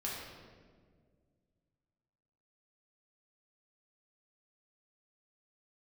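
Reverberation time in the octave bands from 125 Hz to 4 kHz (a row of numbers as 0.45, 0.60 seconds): 2.9, 2.5, 2.1, 1.5, 1.3, 1.1 seconds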